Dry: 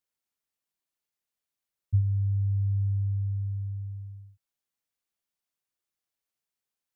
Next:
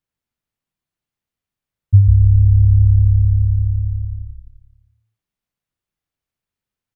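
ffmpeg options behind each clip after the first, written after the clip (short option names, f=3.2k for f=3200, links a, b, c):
-filter_complex "[0:a]bass=f=250:g=12,treble=f=4k:g=-7,asplit=2[a][b];[b]asplit=6[c][d][e][f][g][h];[c]adelay=135,afreqshift=-35,volume=-6dB[i];[d]adelay=270,afreqshift=-70,volume=-12.2dB[j];[e]adelay=405,afreqshift=-105,volume=-18.4dB[k];[f]adelay=540,afreqshift=-140,volume=-24.6dB[l];[g]adelay=675,afreqshift=-175,volume=-30.8dB[m];[h]adelay=810,afreqshift=-210,volume=-37dB[n];[i][j][k][l][m][n]amix=inputs=6:normalize=0[o];[a][o]amix=inputs=2:normalize=0,volume=3dB"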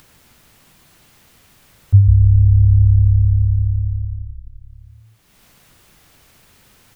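-af "acompressor=mode=upward:threshold=-23dB:ratio=2.5"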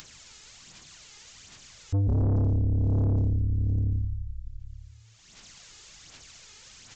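-af "aphaser=in_gain=1:out_gain=1:delay=2.4:decay=0.48:speed=1.3:type=sinusoidal,aresample=16000,asoftclip=type=tanh:threshold=-14dB,aresample=44100,crystalizer=i=6.5:c=0,volume=-7.5dB"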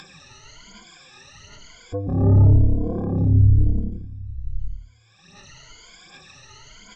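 -af "afftfilt=real='re*pow(10,22/40*sin(2*PI*(1.8*log(max(b,1)*sr/1024/100)/log(2)-(0.98)*(pts-256)/sr)))':imag='im*pow(10,22/40*sin(2*PI*(1.8*log(max(b,1)*sr/1024/100)/log(2)-(0.98)*(pts-256)/sr)))':win_size=1024:overlap=0.75,flanger=delay=4.9:depth=3.2:regen=46:speed=1.3:shape=sinusoidal,aemphasis=mode=reproduction:type=75fm,volume=7.5dB"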